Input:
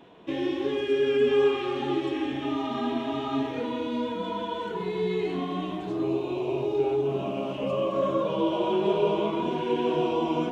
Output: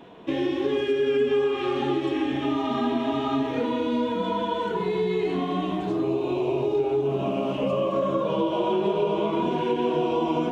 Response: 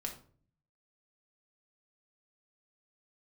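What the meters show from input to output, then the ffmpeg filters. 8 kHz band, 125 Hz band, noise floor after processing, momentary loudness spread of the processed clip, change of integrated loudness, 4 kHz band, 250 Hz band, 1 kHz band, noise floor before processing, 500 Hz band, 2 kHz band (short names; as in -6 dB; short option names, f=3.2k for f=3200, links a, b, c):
n/a, +3.0 dB, -30 dBFS, 3 LU, +2.0 dB, +1.5 dB, +3.0 dB, +3.0 dB, -34 dBFS, +1.5 dB, +1.5 dB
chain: -filter_complex "[0:a]acompressor=threshold=-26dB:ratio=4,asplit=2[a][b];[1:a]atrim=start_sample=2205,lowpass=2.3k[c];[b][c]afir=irnorm=-1:irlink=0,volume=-12dB[d];[a][d]amix=inputs=2:normalize=0,volume=4dB"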